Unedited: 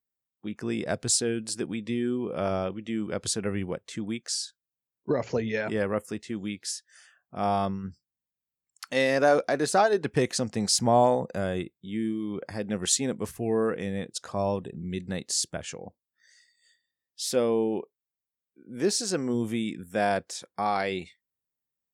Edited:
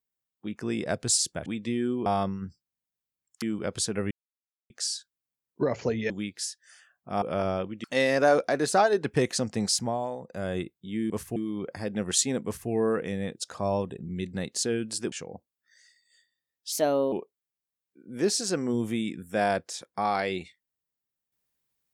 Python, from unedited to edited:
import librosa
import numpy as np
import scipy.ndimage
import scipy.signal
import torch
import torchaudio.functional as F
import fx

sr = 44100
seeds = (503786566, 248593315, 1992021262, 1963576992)

y = fx.edit(x, sr, fx.swap(start_s=1.19, length_s=0.49, other_s=15.37, other_length_s=0.27),
    fx.swap(start_s=2.28, length_s=0.62, other_s=7.48, other_length_s=1.36),
    fx.silence(start_s=3.59, length_s=0.59),
    fx.cut(start_s=5.58, length_s=0.78),
    fx.fade_down_up(start_s=10.63, length_s=0.95, db=-11.5, fade_s=0.35),
    fx.duplicate(start_s=13.18, length_s=0.26, to_s=12.1),
    fx.speed_span(start_s=17.24, length_s=0.49, speed=1.22), tone=tone)